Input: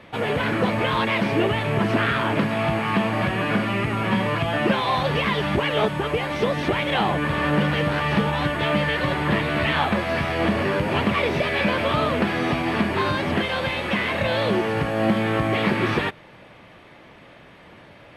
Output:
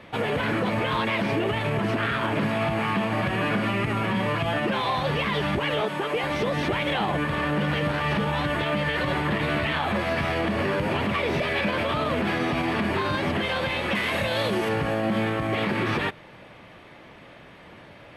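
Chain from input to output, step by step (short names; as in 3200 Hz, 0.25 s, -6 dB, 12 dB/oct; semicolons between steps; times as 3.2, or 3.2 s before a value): 5.81–6.24 HPF 230 Hz 12 dB/oct; 13.95–14.69 high shelf 5000 Hz +11 dB; limiter -16.5 dBFS, peak gain reduction 8 dB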